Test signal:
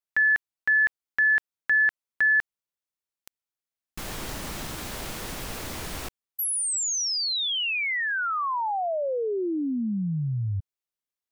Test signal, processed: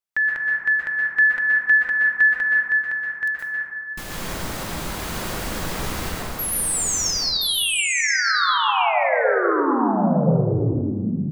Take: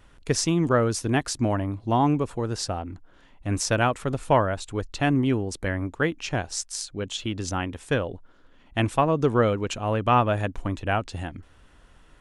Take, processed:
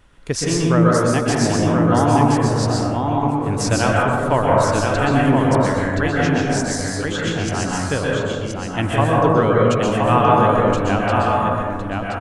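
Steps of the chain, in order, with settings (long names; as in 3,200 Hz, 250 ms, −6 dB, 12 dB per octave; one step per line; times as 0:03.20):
single-tap delay 1,024 ms −4 dB
dense smooth reverb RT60 1.7 s, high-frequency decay 0.3×, pre-delay 110 ms, DRR −4 dB
level +1 dB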